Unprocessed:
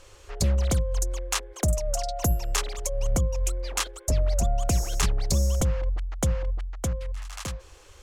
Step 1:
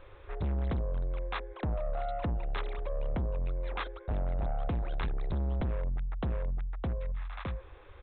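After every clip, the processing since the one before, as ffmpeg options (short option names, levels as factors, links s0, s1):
-af "equalizer=f=3000:t=o:w=0.4:g=-11.5,aresample=8000,asoftclip=type=tanh:threshold=0.0376,aresample=44100"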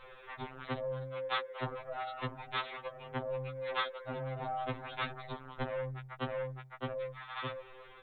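-af "lowshelf=f=430:g=-12,afftfilt=real='re*2.45*eq(mod(b,6),0)':imag='im*2.45*eq(mod(b,6),0)':win_size=2048:overlap=0.75,volume=2.51"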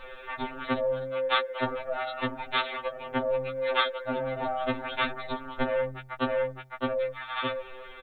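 -af "aecho=1:1:3.4:0.77,volume=2.37"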